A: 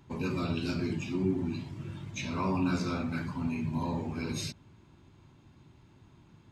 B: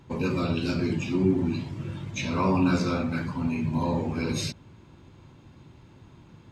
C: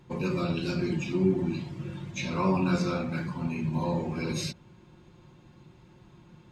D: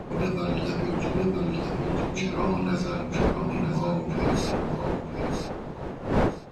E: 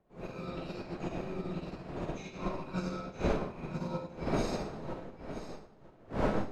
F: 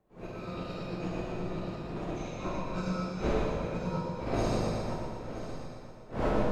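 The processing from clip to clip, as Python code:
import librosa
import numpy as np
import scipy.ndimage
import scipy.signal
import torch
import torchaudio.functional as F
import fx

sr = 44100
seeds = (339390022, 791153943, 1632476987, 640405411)

y1 = fx.peak_eq(x, sr, hz=510.0, db=6.5, octaves=0.24)
y1 = fx.rider(y1, sr, range_db=10, speed_s=2.0)
y1 = fx.high_shelf(y1, sr, hz=10000.0, db=-5.5)
y1 = y1 * 10.0 ** (5.0 / 20.0)
y2 = y1 + 0.53 * np.pad(y1, (int(5.6 * sr / 1000.0), 0))[:len(y1)]
y2 = y2 * 10.0 ** (-3.5 / 20.0)
y3 = fx.dmg_wind(y2, sr, seeds[0], corner_hz=520.0, level_db=-30.0)
y3 = fx.rider(y3, sr, range_db=3, speed_s=0.5)
y3 = fx.echo_feedback(y3, sr, ms=966, feedback_pct=22, wet_db=-6.5)
y4 = fx.rev_freeverb(y3, sr, rt60_s=0.93, hf_ratio=0.95, predelay_ms=10, drr_db=-4.5)
y4 = fx.upward_expand(y4, sr, threshold_db=-35.0, expansion=2.5)
y4 = y4 * 10.0 ** (-8.5 / 20.0)
y5 = fx.echo_feedback(y4, sr, ms=120, feedback_pct=53, wet_db=-6.5)
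y5 = fx.rev_plate(y5, sr, seeds[1], rt60_s=2.1, hf_ratio=0.95, predelay_ms=0, drr_db=-1.0)
y5 = y5 * 10.0 ** (-1.5 / 20.0)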